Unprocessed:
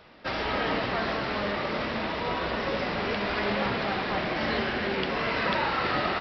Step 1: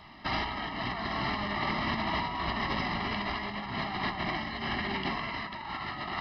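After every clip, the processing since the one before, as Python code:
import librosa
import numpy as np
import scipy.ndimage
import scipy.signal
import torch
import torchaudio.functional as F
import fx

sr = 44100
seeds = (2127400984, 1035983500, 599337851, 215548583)

y = x + 0.96 * np.pad(x, (int(1.0 * sr / 1000.0), 0))[:len(x)]
y = fx.over_compress(y, sr, threshold_db=-29.0, ratio=-0.5)
y = y * 10.0 ** (-3.5 / 20.0)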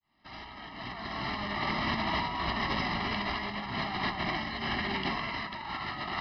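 y = fx.fade_in_head(x, sr, length_s=1.86)
y = fx.high_shelf(y, sr, hz=4600.0, db=4.5)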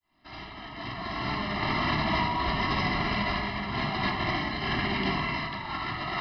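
y = fx.room_shoebox(x, sr, seeds[0], volume_m3=2100.0, walls='furnished', distance_m=3.1)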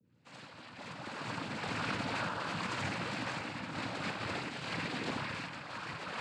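y = fx.add_hum(x, sr, base_hz=60, snr_db=26)
y = fx.noise_vocoder(y, sr, seeds[1], bands=8)
y = y * 10.0 ** (-8.5 / 20.0)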